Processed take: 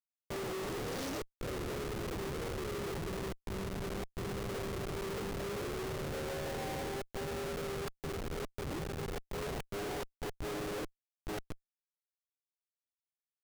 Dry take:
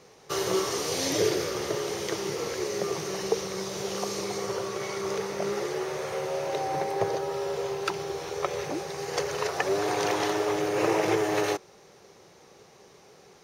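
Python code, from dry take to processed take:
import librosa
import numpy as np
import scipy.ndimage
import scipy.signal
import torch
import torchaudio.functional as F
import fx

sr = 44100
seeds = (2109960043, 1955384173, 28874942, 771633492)

y = fx.wiener(x, sr, points=25)
y = fx.gate_flip(y, sr, shuts_db=-16.0, range_db=-36)
y = fx.schmitt(y, sr, flips_db=-34.5)
y = y * librosa.db_to_amplitude(-5.0)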